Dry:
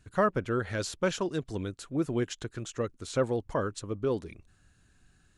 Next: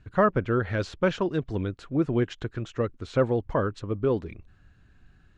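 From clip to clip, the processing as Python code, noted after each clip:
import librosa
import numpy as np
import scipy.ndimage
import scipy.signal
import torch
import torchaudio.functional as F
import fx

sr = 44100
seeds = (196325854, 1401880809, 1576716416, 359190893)

y = scipy.signal.sosfilt(scipy.signal.butter(2, 3000.0, 'lowpass', fs=sr, output='sos'), x)
y = fx.low_shelf(y, sr, hz=130.0, db=4.5)
y = y * 10.0 ** (4.0 / 20.0)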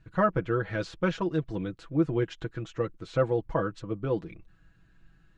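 y = x + 0.72 * np.pad(x, (int(6.1 * sr / 1000.0), 0))[:len(x)]
y = y * 10.0 ** (-4.5 / 20.0)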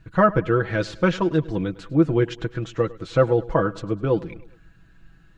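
y = fx.echo_feedback(x, sr, ms=103, feedback_pct=50, wet_db=-20.0)
y = y * 10.0 ** (7.5 / 20.0)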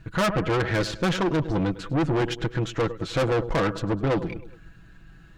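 y = fx.tube_stage(x, sr, drive_db=27.0, bias=0.55)
y = y * 10.0 ** (7.0 / 20.0)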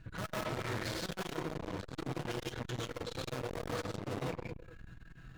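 y = np.clip(x, -10.0 ** (-32.5 / 20.0), 10.0 ** (-32.5 / 20.0))
y = fx.rev_gated(y, sr, seeds[0], gate_ms=190, shape='rising', drr_db=-3.5)
y = fx.transformer_sat(y, sr, knee_hz=460.0)
y = y * 10.0 ** (-5.5 / 20.0)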